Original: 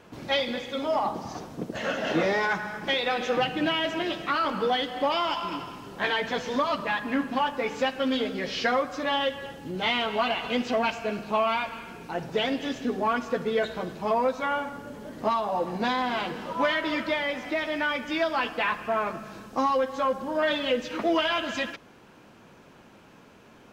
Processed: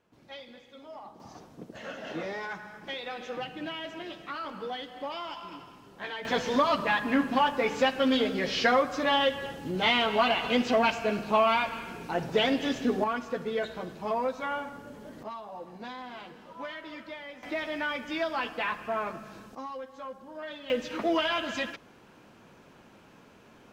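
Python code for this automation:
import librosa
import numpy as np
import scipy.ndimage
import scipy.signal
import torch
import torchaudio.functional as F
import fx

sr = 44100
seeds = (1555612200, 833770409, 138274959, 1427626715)

y = fx.gain(x, sr, db=fx.steps((0.0, -19.0), (1.2, -11.0), (6.25, 1.5), (13.04, -5.0), (15.23, -14.5), (17.43, -4.5), (19.55, -15.0), (20.7, -2.5)))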